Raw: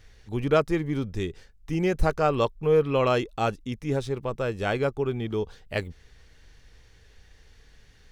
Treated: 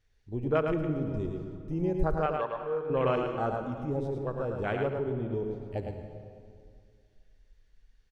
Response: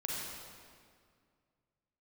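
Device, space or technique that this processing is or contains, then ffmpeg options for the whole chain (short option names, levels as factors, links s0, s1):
ducked reverb: -filter_complex "[0:a]afwtdn=0.0355,asplit=3[s0][s1][s2];[1:a]atrim=start_sample=2205[s3];[s1][s3]afir=irnorm=-1:irlink=0[s4];[s2]apad=whole_len=357759[s5];[s4][s5]sidechaincompress=threshold=0.0251:ratio=3:attack=31:release=144,volume=0.596[s6];[s0][s6]amix=inputs=2:normalize=0,asettb=1/sr,asplit=3[s7][s8][s9];[s7]atrim=end=2.264[s10];[s8]atrim=start=2.26:end=2.9,asetpts=PTS-STARTPTS,afade=t=in:d=0.004:c=qsin,afade=t=out:st=0.636:d=0.004:c=qsin,acrossover=split=510 5100:gain=0.178 1 0.0891[s11][s12][s13];[s11][s12][s13]amix=inputs=3:normalize=0[s14];[s9]atrim=start=2.896[s15];[s10][s14]acrossfade=d=0.004:c1=hsin:c2=qsin[s16];[s16][s15]acrossfade=d=0.004:c1=qsin:c2=hsin,aecho=1:1:108:0.562,volume=0.447"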